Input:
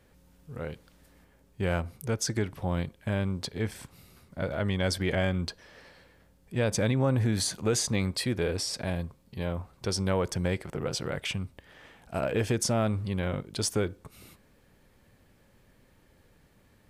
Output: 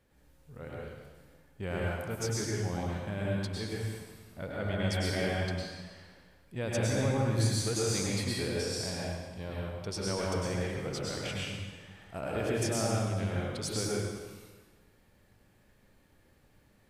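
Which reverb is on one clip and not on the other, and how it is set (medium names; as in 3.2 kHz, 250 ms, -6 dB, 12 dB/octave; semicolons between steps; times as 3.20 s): plate-style reverb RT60 1.3 s, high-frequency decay 0.95×, pre-delay 90 ms, DRR -5 dB; trim -8.5 dB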